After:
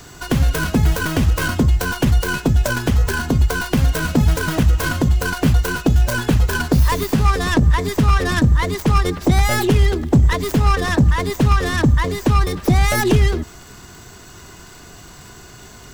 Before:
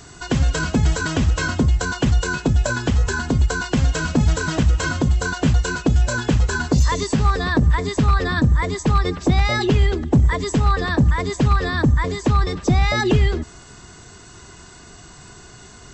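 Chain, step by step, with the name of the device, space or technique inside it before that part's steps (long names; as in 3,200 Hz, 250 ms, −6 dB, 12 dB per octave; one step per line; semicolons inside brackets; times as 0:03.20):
record under a worn stylus (stylus tracing distortion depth 0.33 ms; surface crackle; pink noise bed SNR 35 dB)
level +2 dB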